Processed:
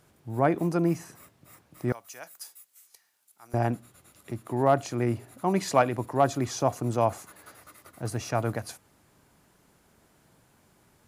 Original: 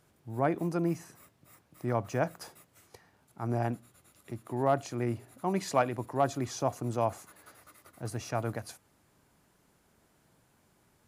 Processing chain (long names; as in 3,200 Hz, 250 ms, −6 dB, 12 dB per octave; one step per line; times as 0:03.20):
0:01.92–0:03.54: first difference
level +5 dB